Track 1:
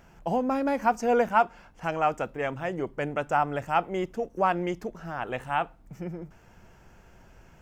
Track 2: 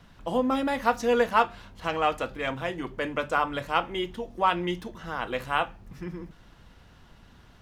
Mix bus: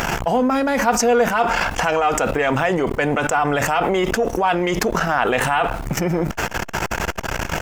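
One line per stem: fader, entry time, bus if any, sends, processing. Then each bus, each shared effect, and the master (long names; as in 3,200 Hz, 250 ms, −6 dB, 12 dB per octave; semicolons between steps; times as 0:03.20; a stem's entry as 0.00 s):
+1.0 dB, 0.00 s, no send, low-shelf EQ 380 Hz −11 dB; envelope flattener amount 100%
+1.5 dB, 0.8 ms, no send, parametric band 1,000 Hz −4 dB 0.79 octaves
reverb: not used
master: saturating transformer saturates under 480 Hz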